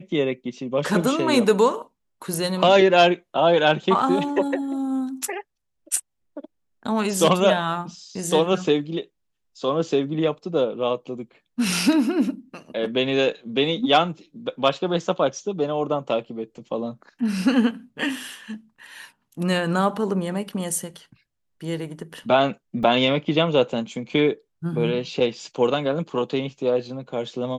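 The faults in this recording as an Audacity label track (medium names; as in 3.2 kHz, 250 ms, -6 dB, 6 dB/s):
22.830000	22.830000	dropout 3.2 ms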